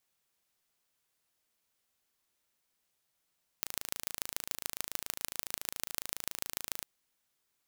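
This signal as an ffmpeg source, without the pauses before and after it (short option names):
-f lavfi -i "aevalsrc='0.562*eq(mod(n,1621),0)*(0.5+0.5*eq(mod(n,6484),0))':d=3.22:s=44100"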